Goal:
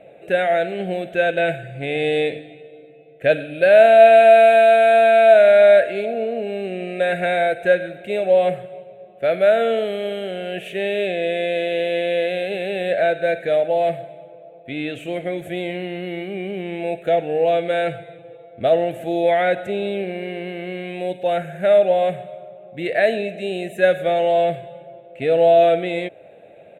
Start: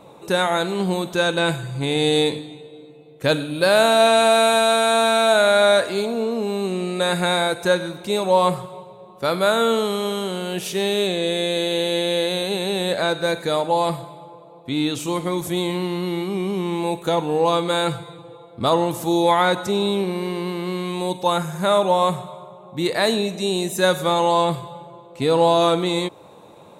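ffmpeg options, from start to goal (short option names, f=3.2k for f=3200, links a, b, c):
-af "firequalizer=gain_entry='entry(300,0);entry(670,14);entry(980,-21);entry(1600,9);entry(2600,9);entry(5000,-22);entry(7800,-11)':delay=0.05:min_phase=1,volume=-6dB"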